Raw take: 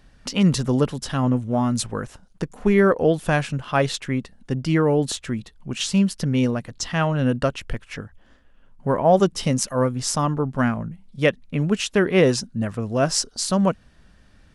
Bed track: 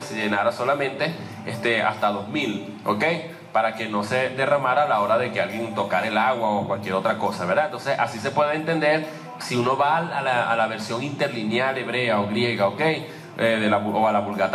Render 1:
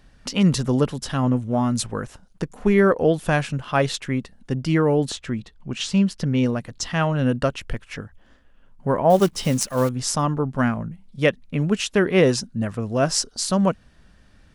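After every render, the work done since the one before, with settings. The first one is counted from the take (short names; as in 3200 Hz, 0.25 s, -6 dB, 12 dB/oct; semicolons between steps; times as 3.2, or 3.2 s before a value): 5.09–6.46 air absorption 54 m; 9.1–9.9 block floating point 5-bit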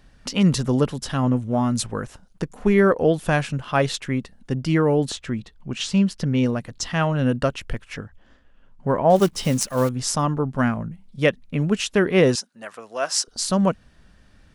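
8–9.16 LPF 7600 Hz; 12.35–13.28 HPF 720 Hz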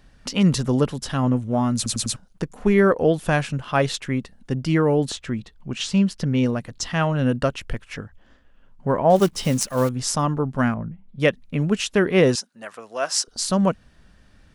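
1.76 stutter in place 0.10 s, 4 plays; 10.74–11.2 air absorption 450 m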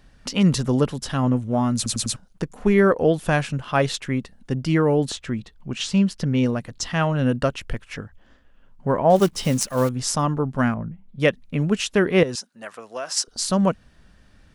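12.23–13.17 compressor 16:1, threshold -24 dBFS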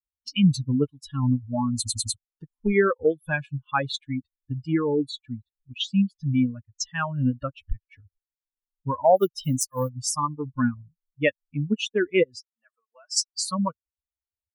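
per-bin expansion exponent 3; in parallel at +3 dB: compressor, threshold -34 dBFS, peak gain reduction 18.5 dB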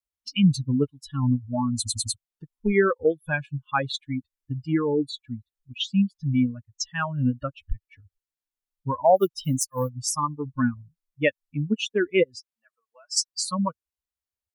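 wow and flutter 21 cents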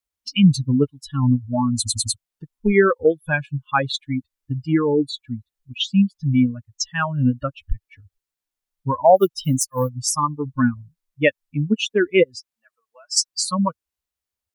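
gain +5 dB; limiter -3 dBFS, peak gain reduction 2 dB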